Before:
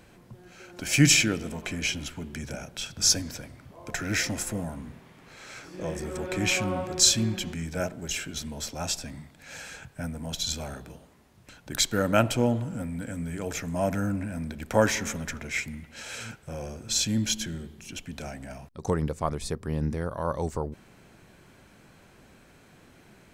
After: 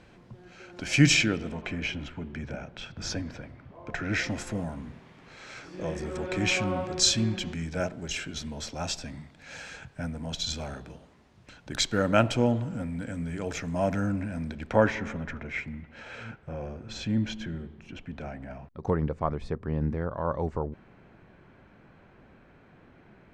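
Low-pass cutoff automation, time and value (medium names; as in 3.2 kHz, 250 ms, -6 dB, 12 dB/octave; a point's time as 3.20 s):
1.15 s 5 kHz
1.89 s 2.5 kHz
3.87 s 2.5 kHz
4.62 s 5.6 kHz
14.49 s 5.6 kHz
14.92 s 2.1 kHz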